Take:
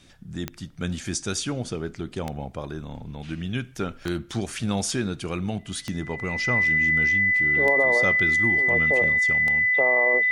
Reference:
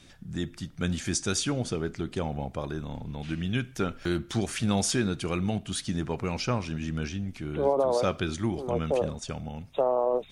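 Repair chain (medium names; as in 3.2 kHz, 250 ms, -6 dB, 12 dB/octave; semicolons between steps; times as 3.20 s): de-click; band-stop 2 kHz, Q 30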